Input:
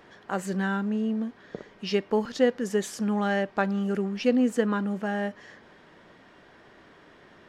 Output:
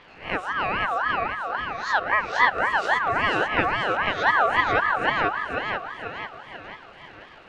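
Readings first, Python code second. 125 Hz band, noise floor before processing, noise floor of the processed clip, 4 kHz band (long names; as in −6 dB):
−3.5 dB, −55 dBFS, −47 dBFS, +8.0 dB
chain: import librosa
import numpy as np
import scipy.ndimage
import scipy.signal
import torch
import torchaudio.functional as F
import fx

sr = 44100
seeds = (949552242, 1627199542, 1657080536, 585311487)

p1 = fx.spec_swells(x, sr, rise_s=0.39)
p2 = fx.dmg_crackle(p1, sr, seeds[0], per_s=210.0, level_db=-42.0)
p3 = scipy.signal.sosfilt(scipy.signal.butter(2, 3000.0, 'lowpass', fs=sr, output='sos'), p2)
p4 = p3 + fx.echo_thinned(p3, sr, ms=490, feedback_pct=54, hz=150.0, wet_db=-3, dry=0)
p5 = fx.ring_lfo(p4, sr, carrier_hz=1200.0, swing_pct=25, hz=3.7)
y = F.gain(torch.from_numpy(p5), 4.0).numpy()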